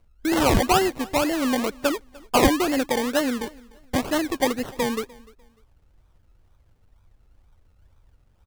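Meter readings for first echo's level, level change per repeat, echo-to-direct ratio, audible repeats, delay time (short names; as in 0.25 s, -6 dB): -23.5 dB, -11.5 dB, -23.0 dB, 2, 0.298 s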